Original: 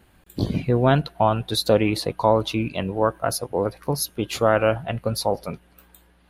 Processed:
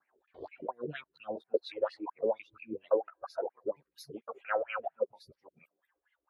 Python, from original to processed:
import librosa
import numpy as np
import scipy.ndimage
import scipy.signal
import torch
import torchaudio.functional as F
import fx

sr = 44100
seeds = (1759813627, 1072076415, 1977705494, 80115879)

y = fx.local_reverse(x, sr, ms=171.0)
y = fx.doubler(y, sr, ms=13.0, db=-5)
y = fx.wah_lfo(y, sr, hz=4.3, low_hz=390.0, high_hz=2400.0, q=5.4)
y = fx.dereverb_blind(y, sr, rt60_s=1.7)
y = fx.stagger_phaser(y, sr, hz=0.7)
y = y * 10.0 ** (-1.5 / 20.0)